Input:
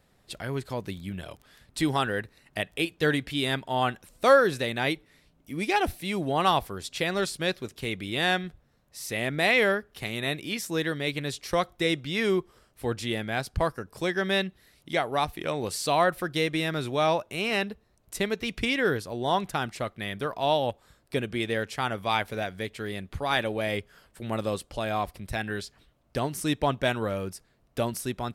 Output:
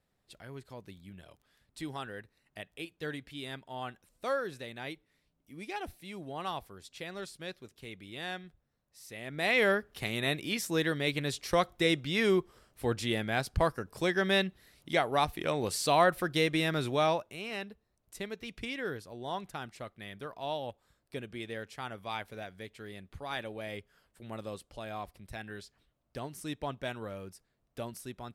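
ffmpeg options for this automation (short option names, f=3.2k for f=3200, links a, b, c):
-af "volume=-1.5dB,afade=t=in:st=9.24:d=0.53:silence=0.237137,afade=t=out:st=16.91:d=0.48:silence=0.316228"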